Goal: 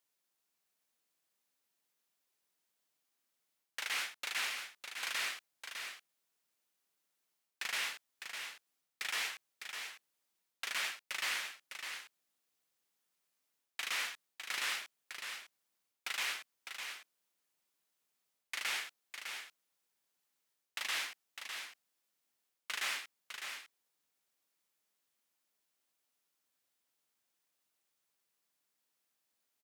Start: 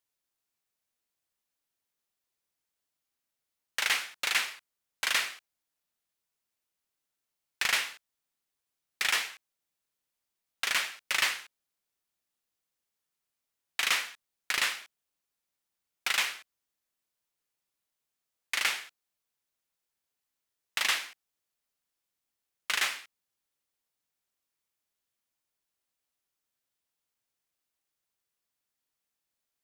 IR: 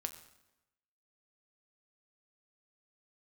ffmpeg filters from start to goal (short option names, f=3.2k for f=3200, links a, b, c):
-af "highpass=150,areverse,acompressor=threshold=-36dB:ratio=16,areverse,aecho=1:1:605:0.447,volume=2dB"